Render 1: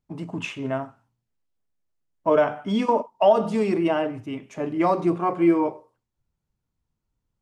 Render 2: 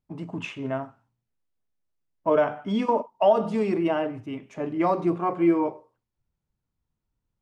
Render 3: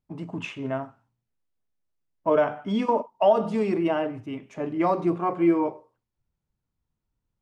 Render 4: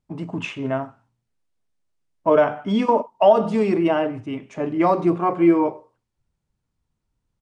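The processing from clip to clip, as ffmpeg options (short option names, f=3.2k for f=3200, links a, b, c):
-af "highshelf=f=5.9k:g=-8.5,volume=-2dB"
-af anull
-af "aresample=22050,aresample=44100,volume=5dB"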